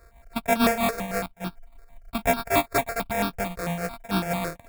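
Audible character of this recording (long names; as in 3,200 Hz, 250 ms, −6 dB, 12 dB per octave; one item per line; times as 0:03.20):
a buzz of ramps at a fixed pitch in blocks of 64 samples
tremolo triangle 6.3 Hz, depth 60%
aliases and images of a low sample rate 3,000 Hz, jitter 0%
notches that jump at a steady rate 9 Hz 840–2,000 Hz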